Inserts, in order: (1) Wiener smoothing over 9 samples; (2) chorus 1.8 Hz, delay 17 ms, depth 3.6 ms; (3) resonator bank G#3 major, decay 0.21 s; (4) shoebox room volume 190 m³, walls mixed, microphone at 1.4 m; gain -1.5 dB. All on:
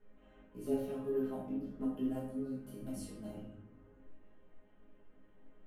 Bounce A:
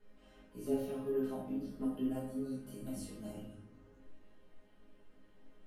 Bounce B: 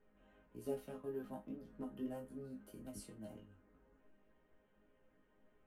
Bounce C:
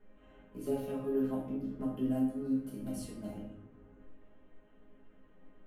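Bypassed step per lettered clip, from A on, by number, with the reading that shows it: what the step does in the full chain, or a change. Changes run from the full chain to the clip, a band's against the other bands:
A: 1, 4 kHz band +2.5 dB; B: 4, echo-to-direct 3.0 dB to none; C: 2, crest factor change -2.5 dB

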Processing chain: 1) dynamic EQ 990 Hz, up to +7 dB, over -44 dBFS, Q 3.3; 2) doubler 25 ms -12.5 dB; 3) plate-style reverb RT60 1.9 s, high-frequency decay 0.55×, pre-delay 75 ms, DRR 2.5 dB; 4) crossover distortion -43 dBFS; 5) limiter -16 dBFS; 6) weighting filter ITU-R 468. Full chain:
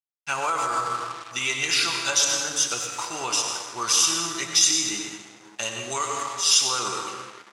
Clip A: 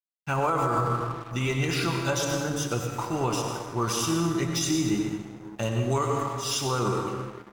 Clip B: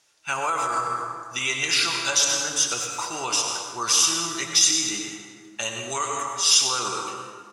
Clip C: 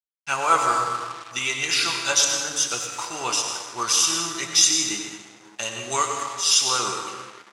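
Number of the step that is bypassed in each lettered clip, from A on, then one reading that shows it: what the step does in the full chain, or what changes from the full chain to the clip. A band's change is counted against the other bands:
6, 125 Hz band +20.5 dB; 4, distortion -21 dB; 5, 1 kHz band +2.0 dB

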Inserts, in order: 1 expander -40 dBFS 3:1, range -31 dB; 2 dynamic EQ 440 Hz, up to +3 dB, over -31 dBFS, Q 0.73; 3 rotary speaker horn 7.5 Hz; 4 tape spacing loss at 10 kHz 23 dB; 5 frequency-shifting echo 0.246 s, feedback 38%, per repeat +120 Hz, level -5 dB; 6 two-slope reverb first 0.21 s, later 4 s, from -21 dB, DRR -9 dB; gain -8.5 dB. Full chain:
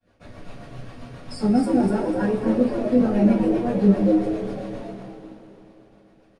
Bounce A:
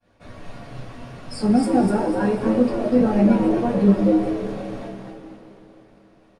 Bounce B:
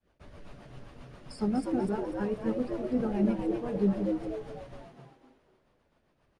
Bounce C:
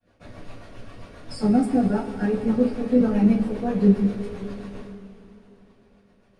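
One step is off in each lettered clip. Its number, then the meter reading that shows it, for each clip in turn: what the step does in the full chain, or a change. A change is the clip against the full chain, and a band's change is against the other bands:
3, 1 kHz band +2.5 dB; 6, echo-to-direct 10.5 dB to -4.5 dB; 5, momentary loudness spread change -3 LU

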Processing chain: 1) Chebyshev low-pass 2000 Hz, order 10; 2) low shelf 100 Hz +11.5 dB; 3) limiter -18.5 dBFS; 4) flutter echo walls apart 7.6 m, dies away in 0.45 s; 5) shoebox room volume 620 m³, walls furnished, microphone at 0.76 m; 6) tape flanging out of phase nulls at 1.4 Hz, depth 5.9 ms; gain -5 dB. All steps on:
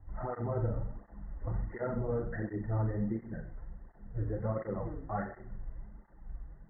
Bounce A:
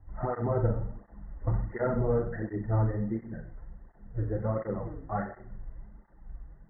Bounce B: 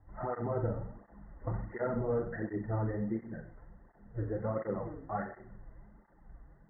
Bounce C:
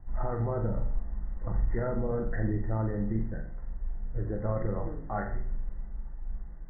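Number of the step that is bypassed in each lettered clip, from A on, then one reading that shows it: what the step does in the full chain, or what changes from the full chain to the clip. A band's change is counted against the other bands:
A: 3, mean gain reduction 1.5 dB; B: 2, 125 Hz band -3.5 dB; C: 6, crest factor change -3.0 dB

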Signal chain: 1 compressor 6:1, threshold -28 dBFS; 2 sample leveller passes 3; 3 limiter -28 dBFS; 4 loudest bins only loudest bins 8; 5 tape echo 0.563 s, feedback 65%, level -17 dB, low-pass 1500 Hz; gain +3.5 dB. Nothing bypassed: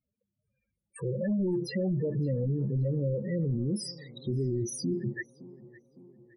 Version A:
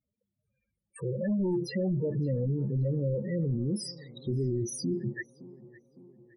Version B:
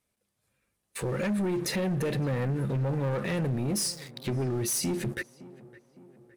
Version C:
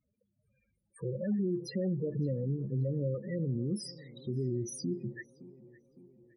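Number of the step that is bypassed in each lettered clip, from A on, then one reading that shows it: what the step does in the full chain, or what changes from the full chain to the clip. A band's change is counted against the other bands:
1, mean gain reduction 2.0 dB; 4, 8 kHz band +9.0 dB; 2, crest factor change +1.5 dB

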